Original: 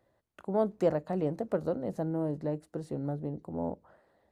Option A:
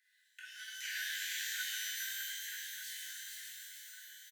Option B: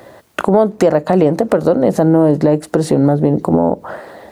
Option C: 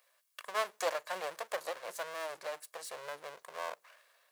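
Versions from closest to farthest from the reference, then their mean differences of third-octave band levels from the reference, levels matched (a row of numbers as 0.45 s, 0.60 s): B, C, A; 4.0 dB, 19.5 dB, 33.0 dB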